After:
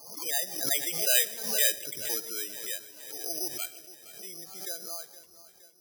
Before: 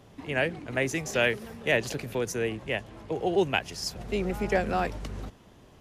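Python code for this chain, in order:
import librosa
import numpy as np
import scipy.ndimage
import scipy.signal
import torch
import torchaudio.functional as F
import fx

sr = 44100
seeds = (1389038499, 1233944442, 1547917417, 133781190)

p1 = fx.doppler_pass(x, sr, speed_mps=30, closest_m=13.0, pass_at_s=1.33)
p2 = fx.highpass(p1, sr, hz=1200.0, slope=6)
p3 = fx.high_shelf(p2, sr, hz=3700.0, db=-5.0)
p4 = fx.rider(p3, sr, range_db=4, speed_s=0.5)
p5 = p3 + F.gain(torch.from_numpy(p4), -2.0).numpy()
p6 = fx.spec_topn(p5, sr, count=16)
p7 = p6 + fx.echo_feedback(p6, sr, ms=467, feedback_pct=59, wet_db=-16, dry=0)
p8 = fx.room_shoebox(p7, sr, seeds[0], volume_m3=3500.0, walls='furnished', distance_m=0.74)
p9 = (np.kron(scipy.signal.resample_poly(p8, 1, 8), np.eye(8)[0]) * 8)[:len(p8)]
p10 = fx.pre_swell(p9, sr, db_per_s=68.0)
y = F.gain(torch.from_numpy(p10), -4.0).numpy()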